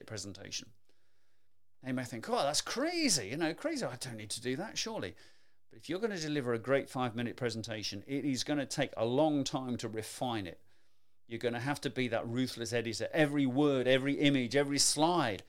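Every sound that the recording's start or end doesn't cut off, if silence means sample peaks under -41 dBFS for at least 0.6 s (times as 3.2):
1.86–5.1
5.85–10.53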